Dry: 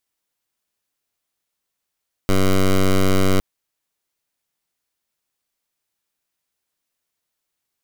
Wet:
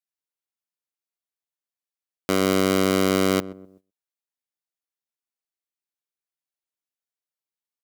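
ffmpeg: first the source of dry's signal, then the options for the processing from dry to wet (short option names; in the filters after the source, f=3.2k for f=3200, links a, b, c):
-f lavfi -i "aevalsrc='0.188*(2*lt(mod(95.4*t,1),0.11)-1)':d=1.11:s=44100"
-filter_complex "[0:a]highpass=210,asplit=2[a][b];[b]adelay=126,lowpass=f=830:p=1,volume=-15dB,asplit=2[c][d];[d]adelay=126,lowpass=f=830:p=1,volume=0.4,asplit=2[e][f];[f]adelay=126,lowpass=f=830:p=1,volume=0.4,asplit=2[g][h];[h]adelay=126,lowpass=f=830:p=1,volume=0.4[i];[a][c][e][g][i]amix=inputs=5:normalize=0,agate=range=-16dB:threshold=-53dB:ratio=16:detection=peak"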